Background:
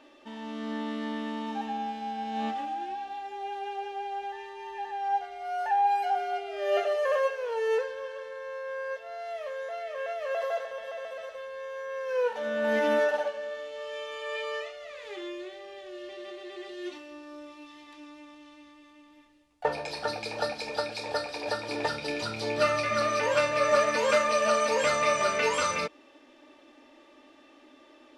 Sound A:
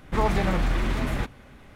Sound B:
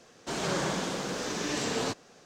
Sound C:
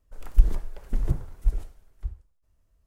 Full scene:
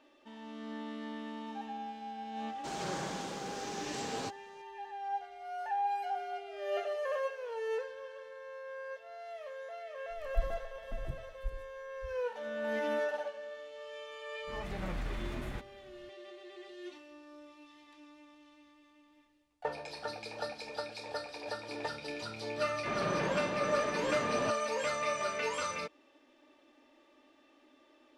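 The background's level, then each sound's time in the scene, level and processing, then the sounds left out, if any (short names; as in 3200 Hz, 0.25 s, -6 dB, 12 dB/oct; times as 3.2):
background -8.5 dB
2.37 add B -8.5 dB
9.99 add C -15.5 dB
14.35 add A -13.5 dB + opening faded in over 0.54 s
22.58 add B -4 dB + air absorption 310 m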